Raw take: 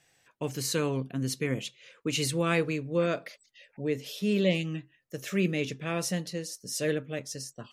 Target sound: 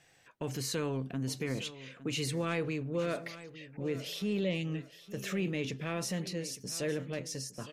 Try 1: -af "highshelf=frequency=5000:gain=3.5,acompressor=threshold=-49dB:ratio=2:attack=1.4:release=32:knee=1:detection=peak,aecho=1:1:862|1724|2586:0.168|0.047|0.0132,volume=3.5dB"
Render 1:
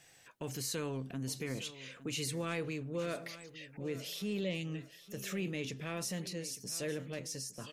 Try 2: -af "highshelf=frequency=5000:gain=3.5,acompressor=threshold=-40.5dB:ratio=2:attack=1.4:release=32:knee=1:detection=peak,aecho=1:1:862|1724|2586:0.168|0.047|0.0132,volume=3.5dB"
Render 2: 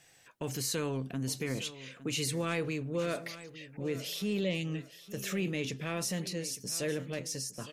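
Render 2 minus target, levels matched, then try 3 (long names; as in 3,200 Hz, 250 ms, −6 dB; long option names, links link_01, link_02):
8,000 Hz band +3.5 dB
-af "highshelf=frequency=5000:gain=-6,acompressor=threshold=-40.5dB:ratio=2:attack=1.4:release=32:knee=1:detection=peak,aecho=1:1:862|1724|2586:0.168|0.047|0.0132,volume=3.5dB"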